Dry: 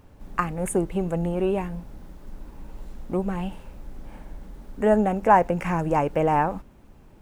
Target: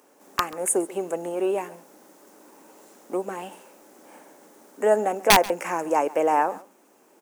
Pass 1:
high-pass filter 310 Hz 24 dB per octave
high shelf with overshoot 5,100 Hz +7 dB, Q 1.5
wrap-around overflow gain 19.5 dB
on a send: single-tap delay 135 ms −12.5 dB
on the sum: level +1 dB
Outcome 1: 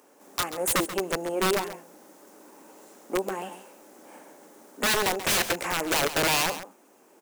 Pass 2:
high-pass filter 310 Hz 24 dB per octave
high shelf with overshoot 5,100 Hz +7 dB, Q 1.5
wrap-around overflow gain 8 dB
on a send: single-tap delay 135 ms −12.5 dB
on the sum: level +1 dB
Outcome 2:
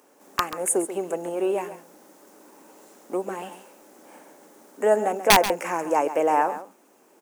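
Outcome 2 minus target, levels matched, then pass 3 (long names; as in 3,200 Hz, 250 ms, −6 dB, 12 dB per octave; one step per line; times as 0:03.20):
echo-to-direct +8 dB
high-pass filter 310 Hz 24 dB per octave
high shelf with overshoot 5,100 Hz +7 dB, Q 1.5
wrap-around overflow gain 8 dB
on a send: single-tap delay 135 ms −20.5 dB
on the sum: level +1 dB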